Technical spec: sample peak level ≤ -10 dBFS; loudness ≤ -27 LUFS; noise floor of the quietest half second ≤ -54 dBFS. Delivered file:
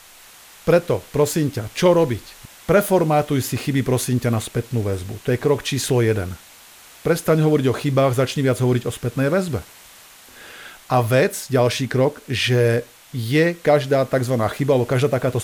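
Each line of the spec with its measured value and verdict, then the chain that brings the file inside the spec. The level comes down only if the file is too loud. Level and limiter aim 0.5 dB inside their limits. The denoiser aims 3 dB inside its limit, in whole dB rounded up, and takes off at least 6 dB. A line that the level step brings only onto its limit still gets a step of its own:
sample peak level -4.0 dBFS: fail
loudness -20.0 LUFS: fail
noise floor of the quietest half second -46 dBFS: fail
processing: denoiser 6 dB, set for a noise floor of -46 dBFS; gain -7.5 dB

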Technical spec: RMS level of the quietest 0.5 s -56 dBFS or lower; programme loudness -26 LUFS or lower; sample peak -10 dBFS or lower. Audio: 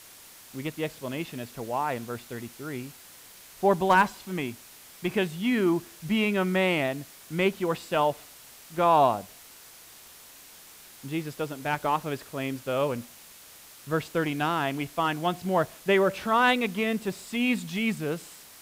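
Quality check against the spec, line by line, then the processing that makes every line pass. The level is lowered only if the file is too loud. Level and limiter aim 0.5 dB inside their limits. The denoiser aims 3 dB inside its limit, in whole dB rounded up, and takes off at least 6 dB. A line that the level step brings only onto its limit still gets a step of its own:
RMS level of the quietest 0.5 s -50 dBFS: fail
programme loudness -27.5 LUFS: OK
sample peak -9.5 dBFS: fail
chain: denoiser 9 dB, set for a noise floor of -50 dBFS; limiter -10.5 dBFS

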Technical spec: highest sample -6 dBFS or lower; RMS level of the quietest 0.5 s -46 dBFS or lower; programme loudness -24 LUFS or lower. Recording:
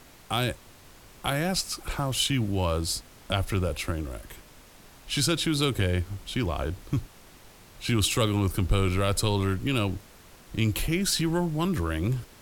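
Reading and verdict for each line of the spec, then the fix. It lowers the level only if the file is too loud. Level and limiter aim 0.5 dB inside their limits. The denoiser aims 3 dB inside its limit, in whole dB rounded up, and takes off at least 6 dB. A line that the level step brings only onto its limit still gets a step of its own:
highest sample -9.0 dBFS: OK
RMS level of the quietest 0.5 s -51 dBFS: OK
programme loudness -27.5 LUFS: OK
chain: none

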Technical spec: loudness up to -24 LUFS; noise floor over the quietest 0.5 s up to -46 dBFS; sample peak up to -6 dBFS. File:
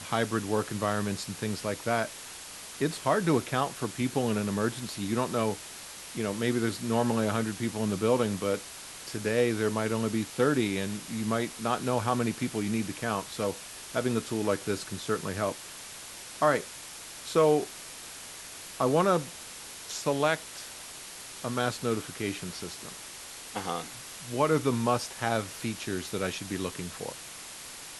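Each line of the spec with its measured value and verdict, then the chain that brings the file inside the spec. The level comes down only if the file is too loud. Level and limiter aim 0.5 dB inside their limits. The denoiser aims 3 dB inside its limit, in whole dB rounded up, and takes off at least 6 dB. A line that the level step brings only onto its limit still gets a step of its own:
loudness -30.0 LUFS: OK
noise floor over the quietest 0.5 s -44 dBFS: fail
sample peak -11.0 dBFS: OK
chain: denoiser 6 dB, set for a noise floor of -44 dBFS

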